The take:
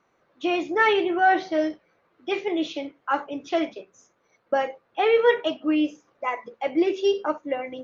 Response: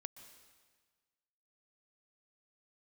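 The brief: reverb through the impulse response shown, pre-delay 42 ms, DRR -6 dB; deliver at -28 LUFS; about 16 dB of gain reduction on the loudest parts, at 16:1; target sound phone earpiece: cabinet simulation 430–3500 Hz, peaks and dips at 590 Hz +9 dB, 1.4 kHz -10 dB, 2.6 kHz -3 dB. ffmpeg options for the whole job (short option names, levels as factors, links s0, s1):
-filter_complex "[0:a]acompressor=threshold=0.0316:ratio=16,asplit=2[s0][s1];[1:a]atrim=start_sample=2205,adelay=42[s2];[s1][s2]afir=irnorm=-1:irlink=0,volume=3.35[s3];[s0][s3]amix=inputs=2:normalize=0,highpass=430,equalizer=f=590:t=q:w=4:g=9,equalizer=f=1400:t=q:w=4:g=-10,equalizer=f=2600:t=q:w=4:g=-3,lowpass=f=3500:w=0.5412,lowpass=f=3500:w=1.3066,volume=1.12"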